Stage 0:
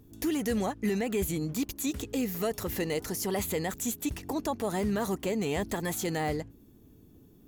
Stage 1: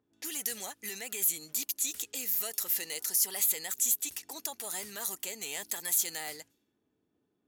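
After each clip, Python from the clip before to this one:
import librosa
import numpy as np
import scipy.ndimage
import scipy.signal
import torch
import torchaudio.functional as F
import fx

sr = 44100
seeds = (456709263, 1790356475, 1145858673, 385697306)

y = fx.env_lowpass(x, sr, base_hz=1100.0, full_db=-30.0)
y = np.diff(y, prepend=0.0)
y = fx.notch(y, sr, hz=1100.0, q=14.0)
y = F.gain(torch.from_numpy(y), 7.5).numpy()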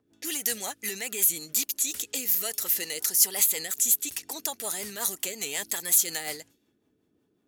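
y = fx.rotary(x, sr, hz=5.5)
y = F.gain(torch.from_numpy(y), 8.5).numpy()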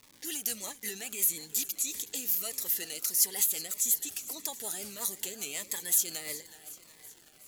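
y = fx.dmg_crackle(x, sr, seeds[0], per_s=430.0, level_db=-38.0)
y = fx.echo_feedback(y, sr, ms=371, feedback_pct=59, wet_db=-16.5)
y = fx.notch_cascade(y, sr, direction='falling', hz=1.6)
y = F.gain(torch.from_numpy(y), -4.5).numpy()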